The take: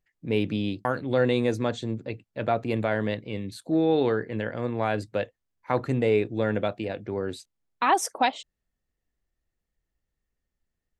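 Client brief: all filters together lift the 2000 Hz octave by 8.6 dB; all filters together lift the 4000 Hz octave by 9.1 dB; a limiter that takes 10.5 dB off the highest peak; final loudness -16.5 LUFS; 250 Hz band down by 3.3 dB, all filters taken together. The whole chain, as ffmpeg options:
-af "equalizer=f=250:t=o:g=-4.5,equalizer=f=2k:t=o:g=9,equalizer=f=4k:t=o:g=8,volume=11.5dB,alimiter=limit=-1.5dB:level=0:latency=1"

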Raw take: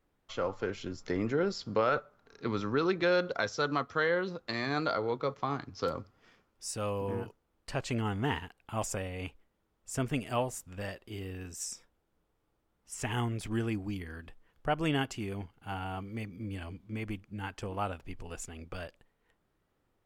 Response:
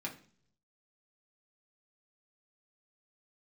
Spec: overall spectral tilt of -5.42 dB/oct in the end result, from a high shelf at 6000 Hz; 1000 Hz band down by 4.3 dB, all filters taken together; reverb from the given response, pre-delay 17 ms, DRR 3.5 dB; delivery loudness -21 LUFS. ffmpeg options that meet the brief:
-filter_complex "[0:a]equalizer=f=1k:t=o:g=-6,highshelf=f=6k:g=-7,asplit=2[a][b];[1:a]atrim=start_sample=2205,adelay=17[c];[b][c]afir=irnorm=-1:irlink=0,volume=-4.5dB[d];[a][d]amix=inputs=2:normalize=0,volume=13dB"

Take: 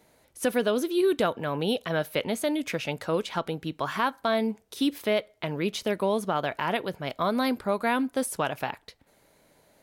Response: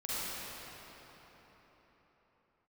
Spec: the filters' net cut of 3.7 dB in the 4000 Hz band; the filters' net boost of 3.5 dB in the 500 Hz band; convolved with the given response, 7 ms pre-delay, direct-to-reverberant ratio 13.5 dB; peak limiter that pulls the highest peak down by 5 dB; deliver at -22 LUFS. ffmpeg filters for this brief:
-filter_complex "[0:a]equalizer=f=500:t=o:g=4.5,equalizer=f=4k:t=o:g=-5,alimiter=limit=-16dB:level=0:latency=1,asplit=2[a][b];[1:a]atrim=start_sample=2205,adelay=7[c];[b][c]afir=irnorm=-1:irlink=0,volume=-19.5dB[d];[a][d]amix=inputs=2:normalize=0,volume=5.5dB"

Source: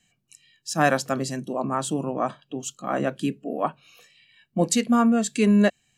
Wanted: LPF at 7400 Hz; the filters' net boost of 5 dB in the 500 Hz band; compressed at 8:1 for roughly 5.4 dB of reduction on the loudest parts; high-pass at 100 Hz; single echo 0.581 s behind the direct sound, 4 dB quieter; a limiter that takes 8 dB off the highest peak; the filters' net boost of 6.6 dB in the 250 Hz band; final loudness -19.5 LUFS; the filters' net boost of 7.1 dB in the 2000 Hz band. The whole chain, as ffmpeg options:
-af "highpass=100,lowpass=7.4k,equalizer=f=250:t=o:g=7,equalizer=f=500:t=o:g=4,equalizer=f=2k:t=o:g=9,acompressor=threshold=-14dB:ratio=8,alimiter=limit=-12.5dB:level=0:latency=1,aecho=1:1:581:0.631,volume=3.5dB"

